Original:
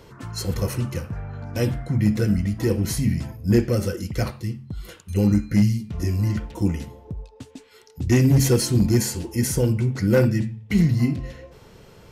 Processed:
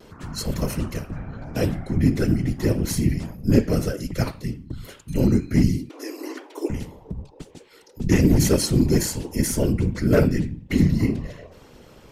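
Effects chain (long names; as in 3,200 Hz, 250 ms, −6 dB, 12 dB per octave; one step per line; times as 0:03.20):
random phases in short frames
pitch vibrato 0.45 Hz 11 cents
0:05.89–0:06.70: linear-phase brick-wall high-pass 270 Hz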